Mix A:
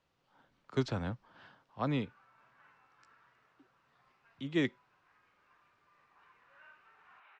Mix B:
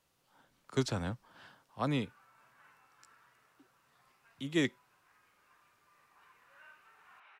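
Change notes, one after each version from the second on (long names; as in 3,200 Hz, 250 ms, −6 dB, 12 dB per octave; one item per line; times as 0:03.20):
master: remove high-frequency loss of the air 150 metres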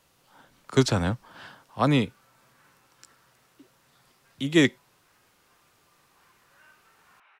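speech +11.0 dB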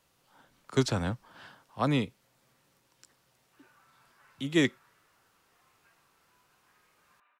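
speech −5.5 dB
background: entry +1.60 s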